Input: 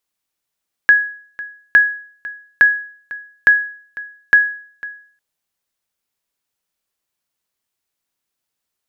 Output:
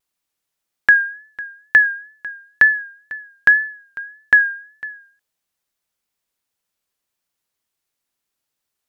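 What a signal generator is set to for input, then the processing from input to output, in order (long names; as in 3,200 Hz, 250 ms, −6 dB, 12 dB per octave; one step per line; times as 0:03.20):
ping with an echo 1,670 Hz, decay 0.50 s, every 0.86 s, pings 5, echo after 0.50 s, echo −19 dB −2.5 dBFS
tape wow and flutter 64 cents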